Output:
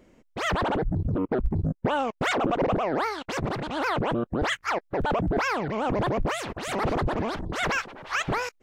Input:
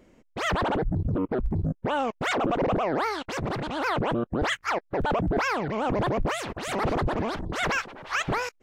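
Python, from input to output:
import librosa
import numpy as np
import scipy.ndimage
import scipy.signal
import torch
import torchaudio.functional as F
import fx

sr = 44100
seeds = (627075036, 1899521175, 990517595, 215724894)

y = fx.transient(x, sr, attack_db=5, sustain_db=-6, at=(1.13, 3.85))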